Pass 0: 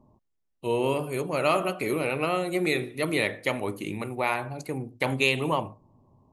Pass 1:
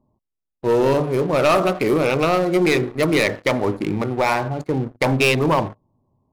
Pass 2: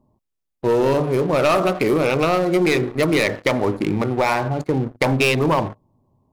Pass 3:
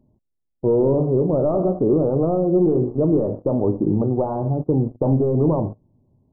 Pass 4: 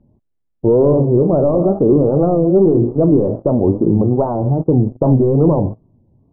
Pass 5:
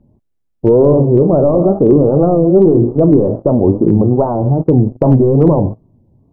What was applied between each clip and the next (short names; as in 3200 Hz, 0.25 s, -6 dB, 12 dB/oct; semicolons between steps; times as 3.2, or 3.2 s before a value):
Wiener smoothing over 15 samples; sample leveller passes 3
compressor 2:1, threshold -21 dBFS, peak gain reduction 4.5 dB; gain +3.5 dB
Gaussian blur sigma 13 samples; gain +3 dB
wow and flutter 140 cents; air absorption 400 m; gain +6.5 dB
hard clip -4 dBFS, distortion -42 dB; gain +3 dB